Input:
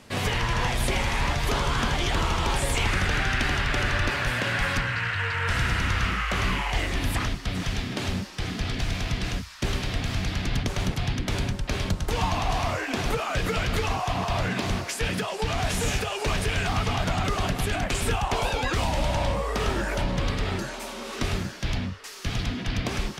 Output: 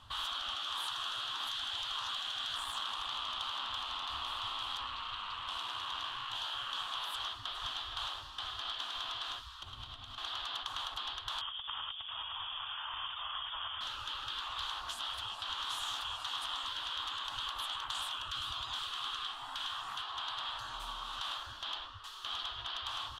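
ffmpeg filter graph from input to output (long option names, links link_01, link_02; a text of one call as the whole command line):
ffmpeg -i in.wav -filter_complex "[0:a]asettb=1/sr,asplit=3[link_01][link_02][link_03];[link_01]atrim=end=2.564[link_04];[link_02]atrim=start=2.56:end=6.35,asetpts=PTS-STARTPTS,afade=type=in:duration=0.004:curve=qsin,afade=type=out:start_time=3.786:duration=0.004:curve=qsin,highpass=frequency=55:width=0.5412,highpass=frequency=55:width=1.3066,aeval=exprs='(tanh(8.91*val(0)+0.55)-tanh(0.55))/8.91':channel_layout=same[link_05];[link_03]atrim=start=6.346[link_06];[link_04][link_05]acrossfade=duration=0.004:curve1=hsin:curve2=qsin[link_07];[link_07][link_06]acrossfade=duration=0.004:curve1=qsin:curve2=hsin,asettb=1/sr,asplit=3[link_08][link_09][link_10];[link_08]atrim=end=9.544[link_11];[link_09]atrim=start=9.54:end=10.18,asetpts=PTS-STARTPTS,afade=type=in:duration=0.004:curve=qsin,afade=type=out:start_time=0.636:duration=0.004:curve=qsin,bandreject=frequency=1700:width=13,acompressor=threshold=-35dB:ratio=6:attack=3.2:release=140:knee=1:detection=peak[link_12];[link_10]atrim=start=10.176[link_13];[link_11][link_12]acrossfade=duration=0.004:curve1=hsin:curve2=qsin[link_14];[link_14][link_13]acrossfade=duration=0.004:curve1=qsin:curve2=hsin,asettb=1/sr,asplit=3[link_15][link_16][link_17];[link_15]atrim=end=11.414[link_18];[link_16]atrim=start=11.41:end=13.81,asetpts=PTS-STARTPTS,afade=type=in:duration=0.004:curve=qsin,afade=type=out:start_time=2.396:duration=0.004:curve=qsin,acompressor=threshold=-26dB:ratio=6:attack=3.2:release=140:knee=1:detection=peak,lowpass=frequency=3100:width_type=q:width=0.5098,lowpass=frequency=3100:width_type=q:width=0.6013,lowpass=frequency=3100:width_type=q:width=0.9,lowpass=frequency=3100:width_type=q:width=2.563,afreqshift=-3600[link_19];[link_17]atrim=start=13.806[link_20];[link_18][link_19]acrossfade=duration=0.004:curve1=hsin:curve2=qsin[link_21];[link_21][link_20]acrossfade=duration=0.004:curve1=qsin:curve2=hsin,afftfilt=real='re*lt(hypot(re,im),0.0708)':imag='im*lt(hypot(re,im),0.0708)':win_size=1024:overlap=0.75,firequalizer=gain_entry='entry(110,0);entry(160,-23);entry(260,-17);entry(450,-24);entry(680,-11);entry(1100,3);entry(2200,-20);entry(3200,4);entry(5100,-14)':delay=0.05:min_phase=1,volume=-1dB" out.wav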